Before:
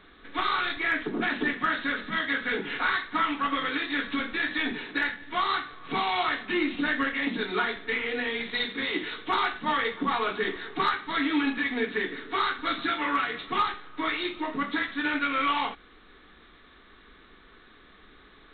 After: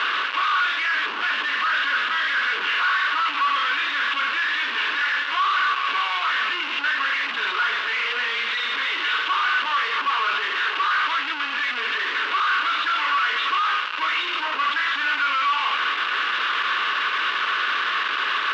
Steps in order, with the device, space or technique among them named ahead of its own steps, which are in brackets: home computer beeper (one-bit comparator; cabinet simulation 750–4000 Hz, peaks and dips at 750 Hz -8 dB, 1.1 kHz +9 dB, 1.5 kHz +8 dB, 2.8 kHz +9 dB); trim +3.5 dB

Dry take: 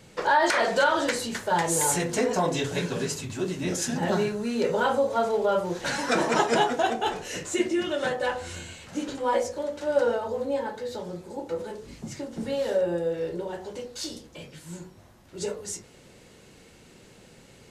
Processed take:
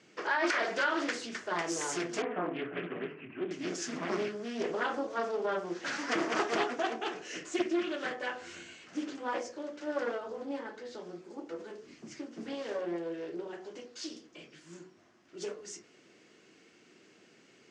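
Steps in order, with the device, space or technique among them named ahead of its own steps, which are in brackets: 2.22–3.51 s: Chebyshev band-pass 110–2600 Hz, order 5; full-range speaker at full volume (loudspeaker Doppler distortion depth 0.58 ms; cabinet simulation 300–6400 Hz, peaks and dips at 320 Hz +5 dB, 530 Hz -9 dB, 880 Hz -9 dB, 3.9 kHz -7 dB); trim -4.5 dB

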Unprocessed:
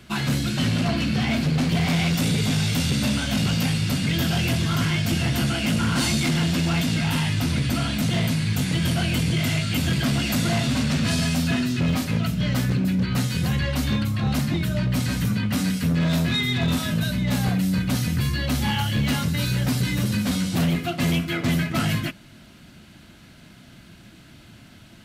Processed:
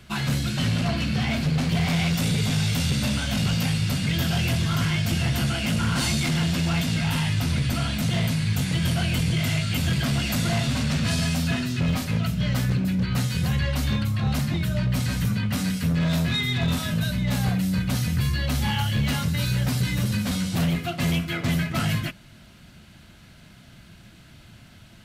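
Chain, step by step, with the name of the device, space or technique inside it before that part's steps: low shelf boost with a cut just above (bass shelf 110 Hz +4.5 dB; peaking EQ 290 Hz -5.5 dB 0.81 oct); trim -1.5 dB

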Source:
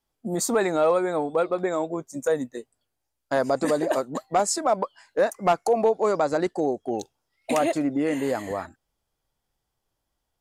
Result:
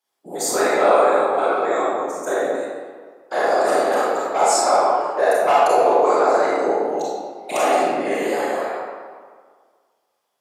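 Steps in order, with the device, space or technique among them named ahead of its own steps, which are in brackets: whispering ghost (whisper effect; high-pass 490 Hz 12 dB/octave; reverberation RT60 1.7 s, pre-delay 28 ms, DRR -8 dB); 6.25–7.00 s: peaking EQ 3.3 kHz -6 dB 0.38 oct

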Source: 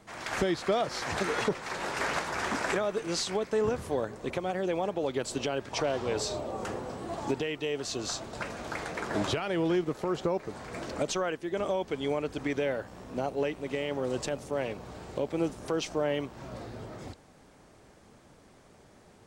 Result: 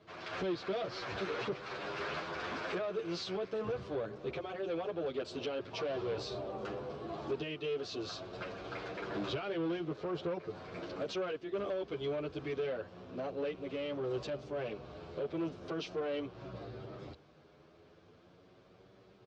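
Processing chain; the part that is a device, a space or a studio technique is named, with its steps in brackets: barber-pole flanger into a guitar amplifier (endless flanger 9.2 ms +0.39 Hz; saturation -31 dBFS, distortion -11 dB; cabinet simulation 77–4500 Hz, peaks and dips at 240 Hz -6 dB, 390 Hz +3 dB, 870 Hz -7 dB, 1.9 kHz -7 dB)

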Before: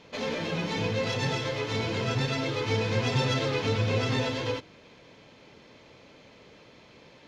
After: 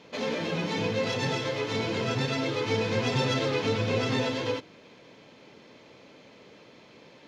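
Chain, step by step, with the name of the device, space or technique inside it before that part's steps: filter by subtraction (in parallel: low-pass 240 Hz 12 dB/octave + polarity flip)

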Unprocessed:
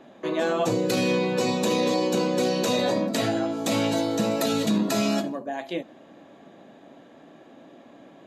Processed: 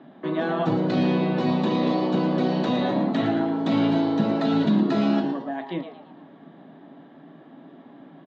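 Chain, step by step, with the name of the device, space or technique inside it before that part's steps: 2.70–3.59 s: band-stop 4.8 kHz, Q 6.7; frequency-shifting delay pedal into a guitar cabinet (frequency-shifting echo 113 ms, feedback 39%, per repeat +140 Hz, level -9.5 dB; cabinet simulation 100–3500 Hz, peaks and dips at 160 Hz +10 dB, 270 Hz +6 dB, 510 Hz -7 dB, 2.5 kHz -8 dB)

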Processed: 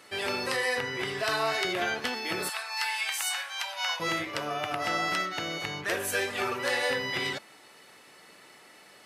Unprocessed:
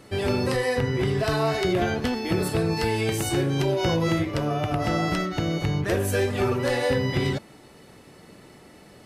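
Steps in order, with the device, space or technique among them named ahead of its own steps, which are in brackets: 2.49–4.00 s: inverse Chebyshev high-pass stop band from 390 Hz, stop band 40 dB; filter by subtraction (in parallel: low-pass 1.7 kHz 12 dB/octave + polarity flip)

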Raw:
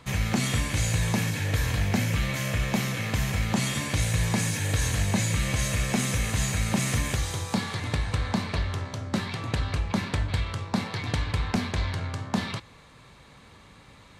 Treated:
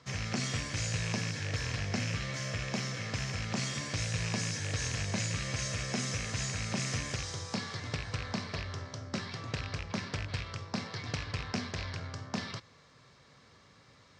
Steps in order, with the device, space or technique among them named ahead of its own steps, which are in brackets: car door speaker with a rattle (rattle on loud lows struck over -24 dBFS, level -18 dBFS; cabinet simulation 99–7300 Hz, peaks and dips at 200 Hz -5 dB, 310 Hz -4 dB, 870 Hz -6 dB, 2.5 kHz -5 dB, 3.6 kHz -3 dB, 5.3 kHz +9 dB); trim -6 dB

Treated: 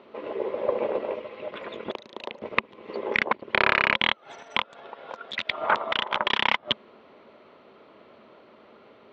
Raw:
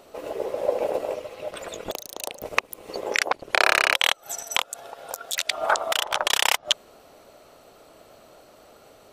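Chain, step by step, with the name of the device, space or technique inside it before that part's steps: guitar amplifier (valve stage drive 7 dB, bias 0.45; tone controls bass -2 dB, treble -8 dB; cabinet simulation 97–3900 Hz, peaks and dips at 220 Hz +10 dB, 380 Hz +5 dB, 730 Hz -6 dB, 1 kHz +6 dB, 2.1 kHz +5 dB, 3.4 kHz +3 dB)

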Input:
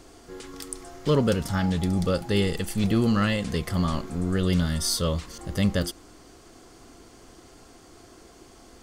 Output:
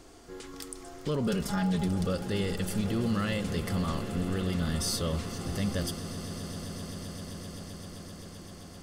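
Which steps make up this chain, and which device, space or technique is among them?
1.26–1.88 s: comb 4.9 ms, depth 93%; soft clipper into limiter (saturation -11 dBFS, distortion -25 dB; peak limiter -19 dBFS, peak gain reduction 6.5 dB); echo with a slow build-up 130 ms, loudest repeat 8, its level -17.5 dB; trim -3 dB

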